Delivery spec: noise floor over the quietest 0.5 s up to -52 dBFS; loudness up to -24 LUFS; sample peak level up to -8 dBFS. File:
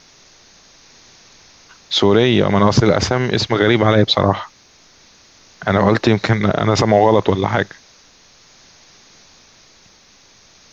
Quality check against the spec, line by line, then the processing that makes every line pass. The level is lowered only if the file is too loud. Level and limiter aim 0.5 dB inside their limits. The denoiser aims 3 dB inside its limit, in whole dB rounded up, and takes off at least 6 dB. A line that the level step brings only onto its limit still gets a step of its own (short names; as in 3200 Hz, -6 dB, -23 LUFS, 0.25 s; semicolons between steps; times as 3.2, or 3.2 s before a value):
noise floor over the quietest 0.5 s -49 dBFS: fail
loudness -15.5 LUFS: fail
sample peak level -2.0 dBFS: fail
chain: gain -9 dB